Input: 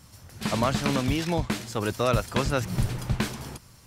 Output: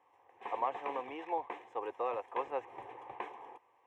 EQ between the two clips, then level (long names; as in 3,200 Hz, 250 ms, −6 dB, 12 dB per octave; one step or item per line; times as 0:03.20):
four-pole ladder band-pass 760 Hz, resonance 55%
phaser with its sweep stopped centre 940 Hz, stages 8
+7.0 dB